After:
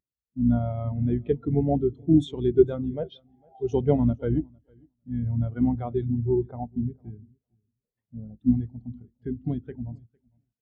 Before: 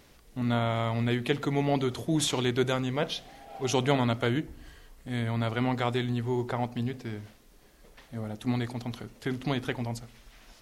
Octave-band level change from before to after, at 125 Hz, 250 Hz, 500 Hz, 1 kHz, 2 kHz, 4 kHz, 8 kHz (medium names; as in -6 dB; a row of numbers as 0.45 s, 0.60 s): +3.0 dB, +5.0 dB, +4.0 dB, -6.0 dB, under -15 dB, under -15 dB, under -20 dB